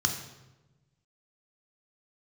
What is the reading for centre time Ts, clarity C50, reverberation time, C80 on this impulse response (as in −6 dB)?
22 ms, 7.5 dB, 1.1 s, 9.5 dB